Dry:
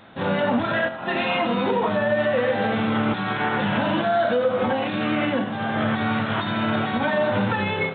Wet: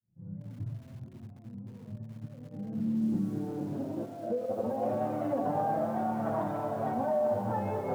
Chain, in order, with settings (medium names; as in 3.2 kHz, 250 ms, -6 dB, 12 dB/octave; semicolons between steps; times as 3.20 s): fade-in on the opening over 1.25 s; dynamic bell 630 Hz, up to +3 dB, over -30 dBFS, Q 2.6; peak limiter -19 dBFS, peak gain reduction 8.5 dB; compressor with a negative ratio -31 dBFS, ratio -1; low-pass sweep 110 Hz -> 730 Hz, 1.47–5.15 s; thinning echo 288 ms, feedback 42%, high-pass 150 Hz, level -13 dB; flange 0.33 Hz, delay 5.5 ms, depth 3.6 ms, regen 0%; bit-crushed delay 215 ms, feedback 35%, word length 8-bit, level -12 dB